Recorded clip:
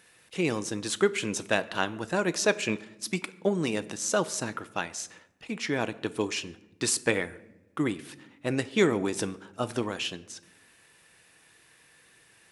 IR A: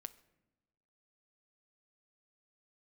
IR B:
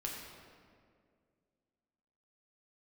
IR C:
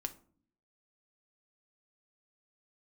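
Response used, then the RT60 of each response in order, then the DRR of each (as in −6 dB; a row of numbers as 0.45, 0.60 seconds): A; non-exponential decay, 2.1 s, 0.50 s; 12.5, −2.5, 6.5 decibels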